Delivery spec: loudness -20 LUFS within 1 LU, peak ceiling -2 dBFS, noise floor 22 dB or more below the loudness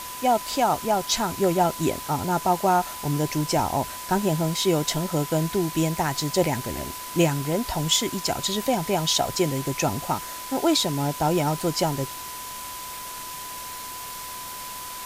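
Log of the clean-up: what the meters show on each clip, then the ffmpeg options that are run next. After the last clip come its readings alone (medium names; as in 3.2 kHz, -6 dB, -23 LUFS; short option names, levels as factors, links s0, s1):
steady tone 1 kHz; tone level -37 dBFS; noise floor -36 dBFS; noise floor target -47 dBFS; loudness -25.0 LUFS; peak level -7.5 dBFS; loudness target -20.0 LUFS
-> -af "bandreject=f=1000:w=30"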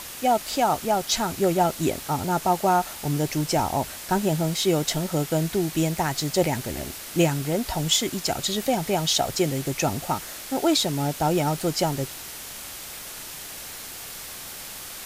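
steady tone not found; noise floor -38 dBFS; noise floor target -47 dBFS
-> -af "afftdn=nr=9:nf=-38"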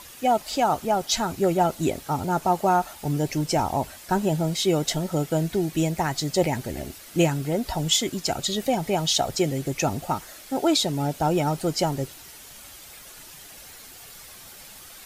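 noise floor -45 dBFS; noise floor target -47 dBFS
-> -af "afftdn=nr=6:nf=-45"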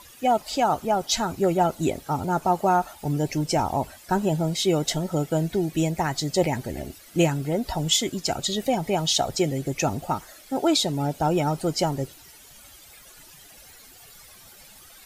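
noise floor -49 dBFS; loudness -24.5 LUFS; peak level -7.5 dBFS; loudness target -20.0 LUFS
-> -af "volume=1.68"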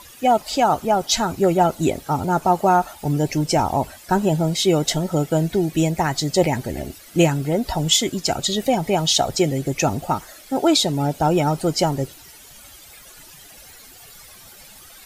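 loudness -20.0 LUFS; peak level -3.0 dBFS; noise floor -45 dBFS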